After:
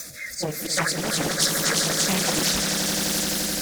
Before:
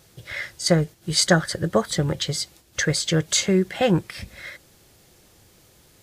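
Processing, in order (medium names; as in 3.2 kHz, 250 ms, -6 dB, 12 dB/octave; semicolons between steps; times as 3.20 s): jump at every zero crossing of -22.5 dBFS; frequency weighting D; spectral noise reduction 21 dB; treble shelf 8.7 kHz +11.5 dB; power-law waveshaper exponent 0.7; compression 2.5:1, threshold -12 dBFS, peak gain reduction 8 dB; rotary cabinet horn 0.7 Hz; plain phase-vocoder stretch 0.6×; slow attack 110 ms; static phaser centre 600 Hz, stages 8; on a send: echo with a slow build-up 86 ms, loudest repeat 8, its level -9.5 dB; on the sum: loudspeaker Doppler distortion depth 0.84 ms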